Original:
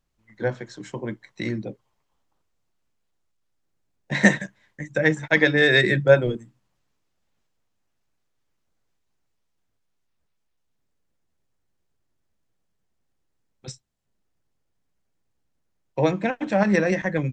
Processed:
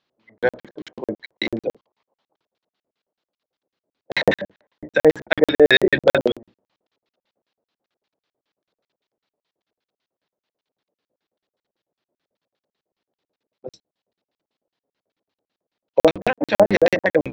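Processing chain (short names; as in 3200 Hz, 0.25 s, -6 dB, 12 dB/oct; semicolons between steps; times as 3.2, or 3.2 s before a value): octaver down 1 oct, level -1 dB; LFO low-pass square 5.1 Hz 580–4000 Hz; BPF 310–5700 Hz; crackling interface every 0.11 s, samples 2048, zero, from 0.38; maximiser +7 dB; gain -1 dB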